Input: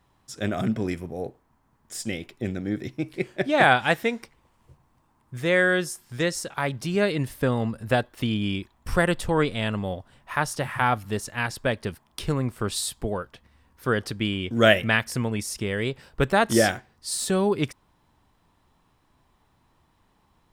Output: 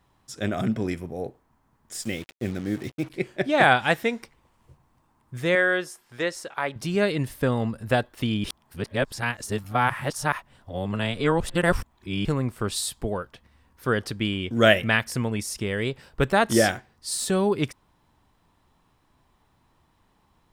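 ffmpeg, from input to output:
-filter_complex "[0:a]asettb=1/sr,asplit=3[s0][s1][s2];[s0]atrim=end=2.024[s3];[s1]atrim=start=2.02:end=3.1,asetpts=PTS-STARTPTS,afade=t=in:d=0.004:c=qsin,afade=t=out:st=1.076:d=0.004:c=qsin,acrusher=bits=6:mix=0:aa=0.5[s4];[s2]atrim=start=3.096[s5];[s3][s4]acrossfade=d=0.004:c1=hsin:c2=qsin[s6];[s6][s5]acrossfade=d=0.004:c1=qsin:c2=hsin,asettb=1/sr,asplit=3[s7][s8][s9];[s7]atrim=end=5.554[s10];[s8]atrim=start=5.55:end=6.76,asetpts=PTS-STARTPTS,afade=t=in:d=0.004:c=qsin,afade=t=out:st=1.206:d=0.004:c=qsin,bass=f=250:g=-13,treble=f=4000:g=-8[s11];[s9]atrim=start=6.756[s12];[s10][s11]acrossfade=d=0.004:c1=hsin:c2=qsin[s13];[s13][s12]acrossfade=d=0.004:c1=qsin:c2=hsin,asplit=3[s14][s15][s16];[s14]atrim=end=8.442[s17];[s15]atrim=start=8.438:end=12.252,asetpts=PTS-STARTPTS,areverse[s18];[s16]atrim=start=12.248[s19];[s17][s18]acrossfade=d=0.004:c1=hsin:c2=hsin[s20];[s20][s19]acrossfade=d=0.004:c1=hsin:c2=hsin"

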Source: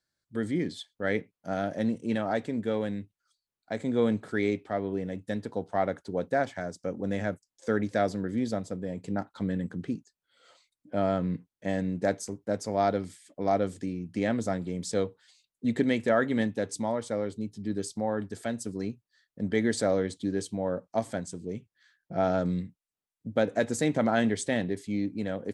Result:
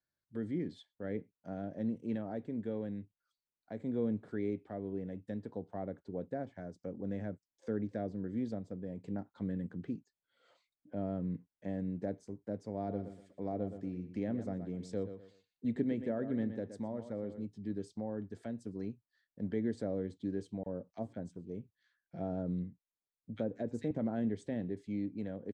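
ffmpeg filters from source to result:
-filter_complex "[0:a]asplit=3[s0][s1][s2];[s0]afade=t=out:st=12.86:d=0.02[s3];[s1]asplit=2[s4][s5];[s5]adelay=120,lowpass=f=4400:p=1,volume=0.282,asplit=2[s6][s7];[s7]adelay=120,lowpass=f=4400:p=1,volume=0.25,asplit=2[s8][s9];[s9]adelay=120,lowpass=f=4400:p=1,volume=0.25[s10];[s4][s6][s8][s10]amix=inputs=4:normalize=0,afade=t=in:st=12.86:d=0.02,afade=t=out:st=17.45:d=0.02[s11];[s2]afade=t=in:st=17.45:d=0.02[s12];[s3][s11][s12]amix=inputs=3:normalize=0,asettb=1/sr,asplit=3[s13][s14][s15];[s13]atrim=end=20.634[s16];[s14]atrim=start=20.63:end=23.91,asetpts=PTS-STARTPTS,afade=t=in:d=0.004:c=qsin,afade=t=out:st=3.276:d=0.004:c=qsin,acrossover=split=1800[s17][s18];[s17]adelay=30[s19];[s19][s18]amix=inputs=2:normalize=0,atrim=end_sample=144648[s20];[s15]atrim=start=23.906[s21];[s16][s20]acrossfade=d=0.004:c1=hsin:c2=qsin[s22];[s22][s21]acrossfade=d=0.004:c1=qsin:c2=hsin,aemphasis=mode=reproduction:type=75fm,bandreject=f=1300:w=25,acrossover=split=500[s23][s24];[s24]acompressor=threshold=0.00447:ratio=2.5[s25];[s23][s25]amix=inputs=2:normalize=0,volume=0.422"

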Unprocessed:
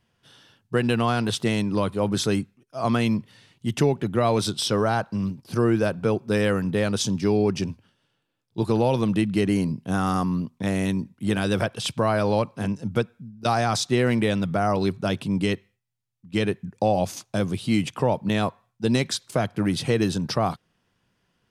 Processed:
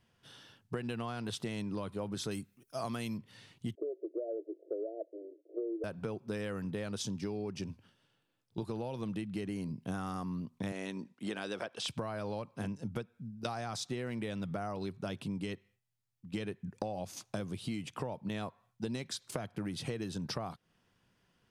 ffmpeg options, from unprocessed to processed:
-filter_complex "[0:a]asettb=1/sr,asplit=3[s0][s1][s2];[s0]atrim=end=2.314[s3];[s1]atrim=start=2.31:end=3.18,asetpts=PTS-STARTPTS,afade=t=in:d=0.004:c=qsin,afade=t=out:st=0.866:d=0.004:c=qsin,aemphasis=mode=production:type=50fm[s4];[s2]atrim=start=3.176[s5];[s3][s4]acrossfade=d=0.004:c1=hsin:c2=qsin[s6];[s6][s5]acrossfade=d=0.004:c1=qsin:c2=hsin,asettb=1/sr,asplit=3[s7][s8][s9];[s7]atrim=end=3.754[s10];[s8]atrim=start=3.75:end=5.84,asetpts=PTS-STARTPTS,afade=t=in:d=0.004:c=qsin,afade=t=out:st=2.086:d=0.004:c=qsin,asuperpass=centerf=450:order=20:qfactor=1.3[s11];[s9]atrim=start=5.836[s12];[s10][s11]acrossfade=d=0.004:c1=hsin:c2=qsin[s13];[s13][s12]acrossfade=d=0.004:c1=qsin:c2=hsin,asettb=1/sr,asplit=3[s14][s15][s16];[s14]atrim=end=10.724[s17];[s15]atrim=start=10.72:end=11.88,asetpts=PTS-STARTPTS,afade=t=in:d=0.004:c=qsin,afade=t=out:st=1.156:d=0.004:c=qsin,highpass=310,lowpass=7700[s18];[s16]atrim=start=11.876[s19];[s17][s18]acrossfade=d=0.004:c1=hsin:c2=qsin[s20];[s20][s19]acrossfade=d=0.004:c1=qsin:c2=hsin,acompressor=threshold=0.0251:ratio=12,volume=0.75"

